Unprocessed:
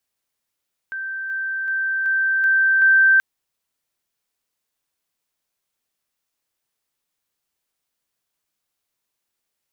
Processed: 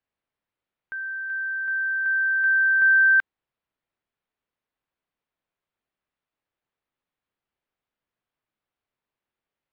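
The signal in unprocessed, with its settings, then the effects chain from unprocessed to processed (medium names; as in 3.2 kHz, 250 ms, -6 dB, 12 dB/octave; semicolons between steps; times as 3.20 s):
level ladder 1.56 kHz -25.5 dBFS, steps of 3 dB, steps 6, 0.38 s 0.00 s
distance through air 400 m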